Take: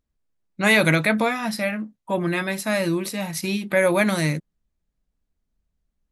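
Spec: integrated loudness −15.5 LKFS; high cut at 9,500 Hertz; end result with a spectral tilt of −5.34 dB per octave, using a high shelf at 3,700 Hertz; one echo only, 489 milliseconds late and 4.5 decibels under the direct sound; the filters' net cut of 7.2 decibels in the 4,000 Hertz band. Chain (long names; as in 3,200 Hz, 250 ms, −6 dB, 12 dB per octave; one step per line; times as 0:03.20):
low-pass filter 9,500 Hz
high-shelf EQ 3,700 Hz −8 dB
parametric band 4,000 Hz −4 dB
single-tap delay 489 ms −4.5 dB
level +7 dB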